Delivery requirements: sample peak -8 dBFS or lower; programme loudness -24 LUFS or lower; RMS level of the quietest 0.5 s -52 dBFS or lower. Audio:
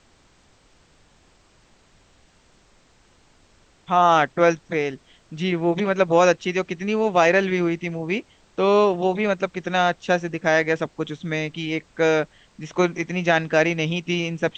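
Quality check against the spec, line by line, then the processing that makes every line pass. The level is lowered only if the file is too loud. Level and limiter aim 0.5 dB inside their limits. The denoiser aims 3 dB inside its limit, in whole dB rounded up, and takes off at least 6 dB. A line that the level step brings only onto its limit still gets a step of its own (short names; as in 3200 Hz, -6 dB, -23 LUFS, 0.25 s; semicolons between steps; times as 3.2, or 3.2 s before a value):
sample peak -4.5 dBFS: fail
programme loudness -21.5 LUFS: fail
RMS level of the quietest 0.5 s -57 dBFS: OK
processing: gain -3 dB; limiter -8.5 dBFS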